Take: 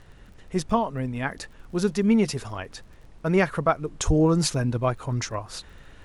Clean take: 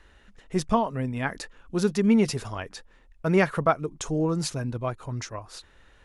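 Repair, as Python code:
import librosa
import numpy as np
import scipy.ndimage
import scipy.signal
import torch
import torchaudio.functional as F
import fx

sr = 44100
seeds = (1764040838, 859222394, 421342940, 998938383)

y = fx.fix_declick_ar(x, sr, threshold=6.5)
y = fx.highpass(y, sr, hz=140.0, slope=24, at=(4.06, 4.18), fade=0.02)
y = fx.noise_reduce(y, sr, print_start_s=0.01, print_end_s=0.51, reduce_db=7.0)
y = fx.gain(y, sr, db=fx.steps((0.0, 0.0), (3.98, -5.5)))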